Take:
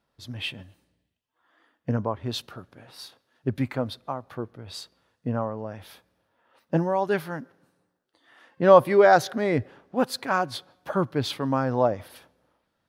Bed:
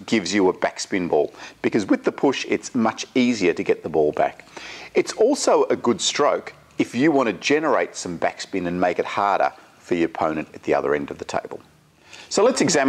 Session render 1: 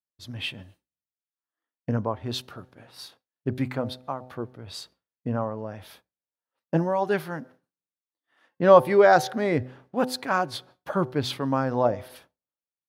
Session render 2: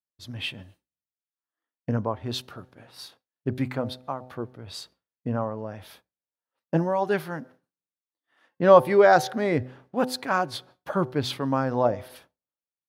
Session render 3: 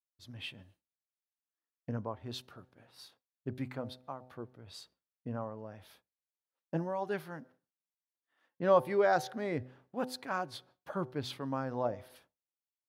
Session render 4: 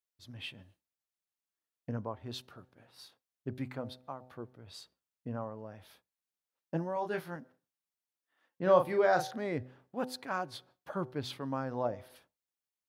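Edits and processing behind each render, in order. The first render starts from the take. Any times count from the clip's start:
de-hum 126.9 Hz, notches 7; expander -47 dBFS
no audible change
trim -11 dB
6.94–7.36 s: doubling 23 ms -5 dB; 8.62–9.36 s: doubling 38 ms -7 dB

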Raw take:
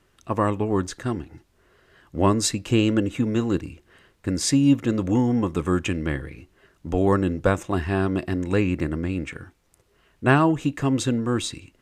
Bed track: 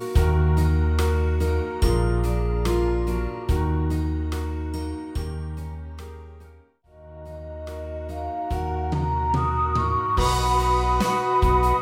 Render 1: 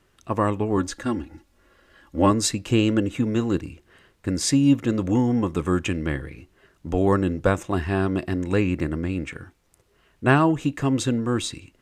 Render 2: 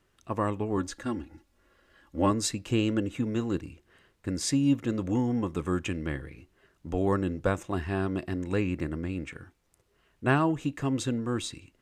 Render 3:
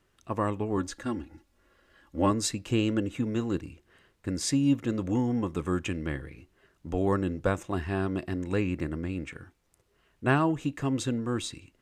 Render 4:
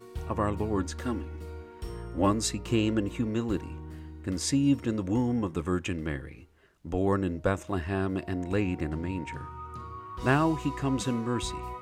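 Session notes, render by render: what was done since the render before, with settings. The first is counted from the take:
0.77–2.31 s: comb 3.6 ms
trim -6.5 dB
no audible change
add bed track -18.5 dB

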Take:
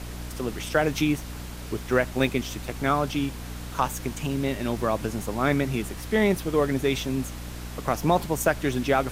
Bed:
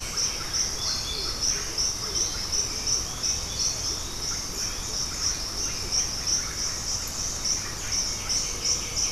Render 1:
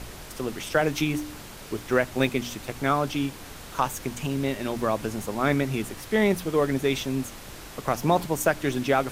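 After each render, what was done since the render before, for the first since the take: de-hum 60 Hz, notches 5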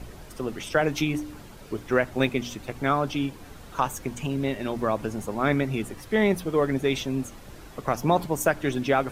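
noise reduction 9 dB, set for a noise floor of -42 dBFS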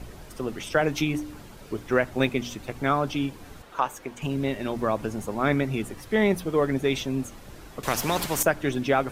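3.62–4.22 s: tone controls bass -13 dB, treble -7 dB; 7.83–8.43 s: spectrum-flattening compressor 2:1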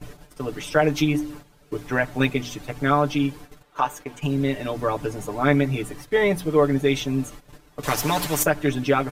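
gate -41 dBFS, range -13 dB; comb 6.8 ms, depth 90%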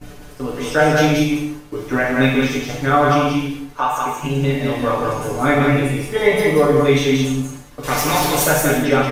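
delay 181 ms -3 dB; gated-style reverb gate 260 ms falling, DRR -4 dB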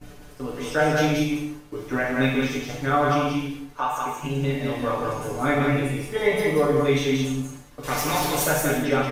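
trim -6.5 dB

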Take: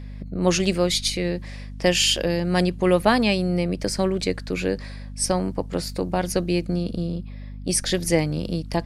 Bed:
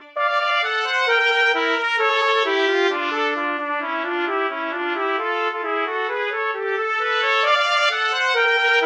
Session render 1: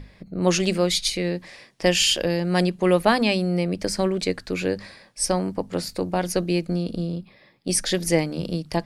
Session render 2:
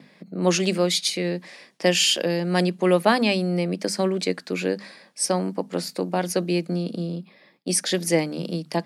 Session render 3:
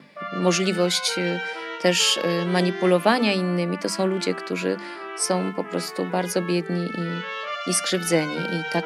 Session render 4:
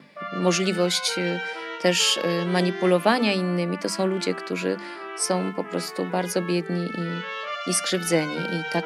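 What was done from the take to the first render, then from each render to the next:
hum notches 50/100/150/200/250 Hz
gate with hold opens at -47 dBFS; steep high-pass 160 Hz
add bed -13 dB
trim -1 dB

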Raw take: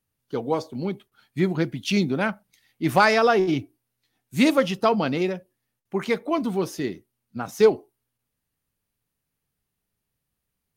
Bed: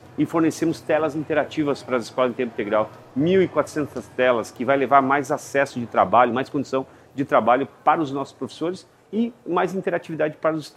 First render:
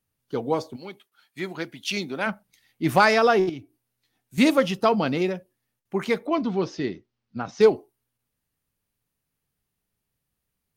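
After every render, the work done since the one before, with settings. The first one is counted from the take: 0.75–2.26 s: high-pass 1.3 kHz -> 600 Hz 6 dB/octave; 3.49–4.38 s: compression 1.5:1, threshold -53 dBFS; 6.27–7.61 s: steep low-pass 5.7 kHz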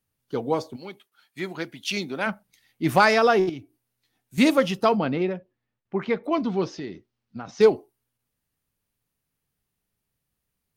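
4.97–6.24 s: distance through air 270 m; 6.75–7.57 s: compression 2.5:1, threshold -32 dBFS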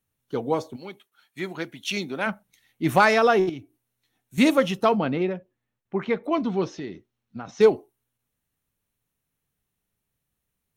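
band-stop 4.8 kHz, Q 6.3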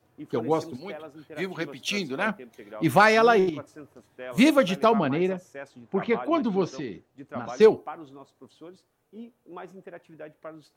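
add bed -20 dB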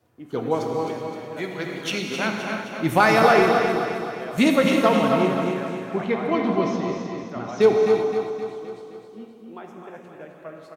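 on a send: feedback delay 261 ms, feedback 53%, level -7 dB; on the sum: gated-style reverb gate 400 ms flat, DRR 1.5 dB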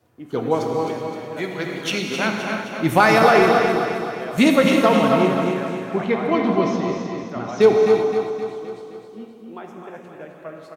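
trim +3 dB; peak limiter -3 dBFS, peak gain reduction 2.5 dB

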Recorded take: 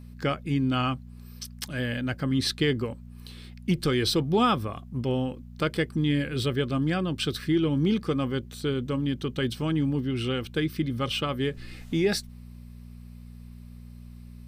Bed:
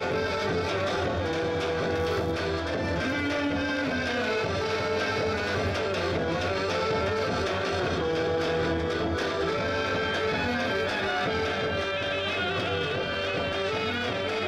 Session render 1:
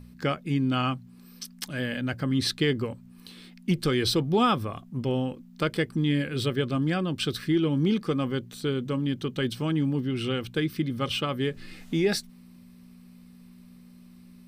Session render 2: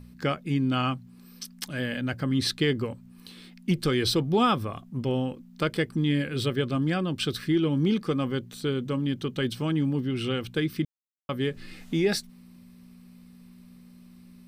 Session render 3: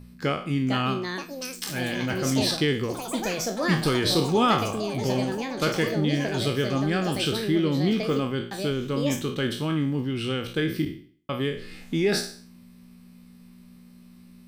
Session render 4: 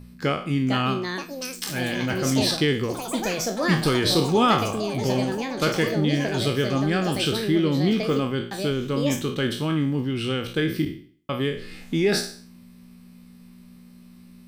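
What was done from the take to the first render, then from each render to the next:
de-hum 60 Hz, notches 2
10.85–11.29 s: mute
spectral sustain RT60 0.48 s; ever faster or slower copies 527 ms, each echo +6 st, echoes 3, each echo -6 dB
trim +2 dB

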